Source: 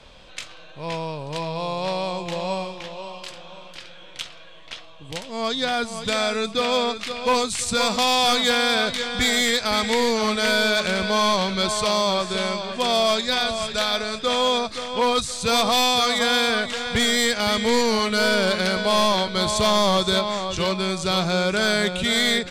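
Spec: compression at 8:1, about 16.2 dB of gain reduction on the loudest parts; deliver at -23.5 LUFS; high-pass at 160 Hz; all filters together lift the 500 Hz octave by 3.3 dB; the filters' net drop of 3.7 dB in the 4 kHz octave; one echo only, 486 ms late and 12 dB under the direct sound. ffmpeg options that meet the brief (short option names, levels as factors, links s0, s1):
-af "highpass=160,equalizer=f=500:t=o:g=4,equalizer=f=4000:t=o:g=-4.5,acompressor=threshold=0.0251:ratio=8,aecho=1:1:486:0.251,volume=3.55"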